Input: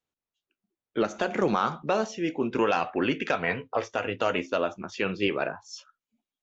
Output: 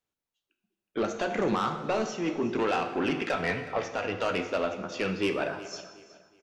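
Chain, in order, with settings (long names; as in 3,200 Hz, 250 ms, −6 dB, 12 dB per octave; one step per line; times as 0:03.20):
soft clipping −21 dBFS, distortion −12 dB
repeating echo 368 ms, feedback 32%, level −18 dB
dense smooth reverb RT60 1.4 s, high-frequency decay 0.85×, DRR 7 dB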